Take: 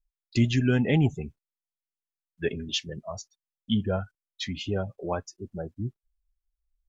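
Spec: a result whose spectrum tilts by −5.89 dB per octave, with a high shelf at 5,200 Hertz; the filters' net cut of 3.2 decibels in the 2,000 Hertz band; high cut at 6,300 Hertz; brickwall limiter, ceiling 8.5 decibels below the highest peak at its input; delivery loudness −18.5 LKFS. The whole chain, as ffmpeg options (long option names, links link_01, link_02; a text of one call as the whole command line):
ffmpeg -i in.wav -af "lowpass=6300,equalizer=frequency=2000:width_type=o:gain=-3.5,highshelf=frequency=5200:gain=-5,volume=14.5dB,alimiter=limit=-5.5dB:level=0:latency=1" out.wav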